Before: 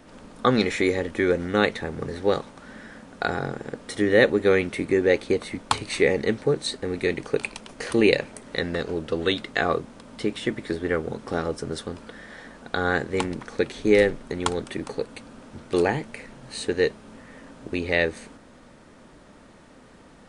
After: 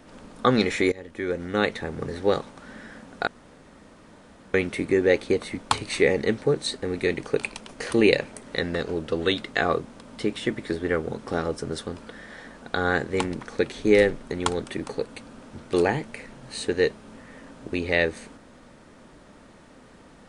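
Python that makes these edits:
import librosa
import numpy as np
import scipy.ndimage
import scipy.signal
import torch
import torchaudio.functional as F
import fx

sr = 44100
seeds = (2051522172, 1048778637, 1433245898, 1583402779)

y = fx.edit(x, sr, fx.fade_in_from(start_s=0.92, length_s=1.34, curve='qsin', floor_db=-18.5),
    fx.room_tone_fill(start_s=3.27, length_s=1.27), tone=tone)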